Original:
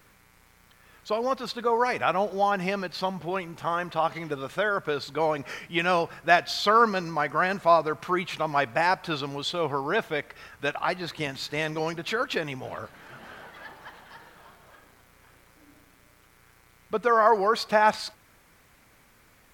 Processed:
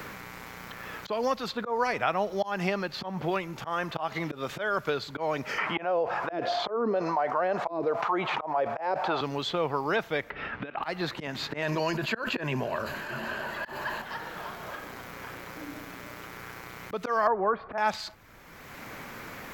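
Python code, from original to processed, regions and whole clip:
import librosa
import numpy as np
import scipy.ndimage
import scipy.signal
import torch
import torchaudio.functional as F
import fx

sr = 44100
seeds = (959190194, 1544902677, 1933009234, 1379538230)

y = fx.chain(x, sr, fx.auto_wah(base_hz=310.0, top_hz=1200.0, q=2.7, full_db=-14.5, direction='down'),
    fx.env_flatten(amount_pct=70), at=(5.58, 9.21))
y = fx.chain(y, sr, fx.peak_eq(hz=250.0, db=7.0, octaves=0.74),
    fx.over_compress(threshold_db=-34.0, ratio=-0.5),
    fx.lowpass(hz=3200.0, slope=24), at=(10.3, 10.83))
y = fx.chain(y, sr, fx.ripple_eq(per_octave=1.4, db=8),
    fx.sustainer(db_per_s=43.0), at=(11.62, 14.02))
y = fx.chain(y, sr, fx.lowpass(hz=1500.0, slope=24),
    fx.band_squash(depth_pct=70), at=(17.27, 17.78))
y = fx.peak_eq(y, sr, hz=9300.0, db=-13.0, octaves=0.28)
y = fx.auto_swell(y, sr, attack_ms=206.0)
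y = fx.band_squash(y, sr, depth_pct=70)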